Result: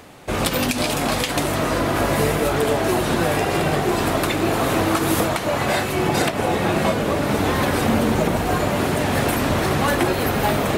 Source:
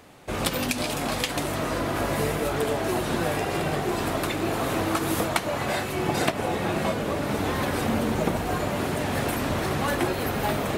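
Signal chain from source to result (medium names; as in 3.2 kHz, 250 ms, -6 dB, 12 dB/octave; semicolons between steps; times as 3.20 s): reverse; upward compressor, threshold -41 dBFS; reverse; loudness maximiser +13.5 dB; trim -7 dB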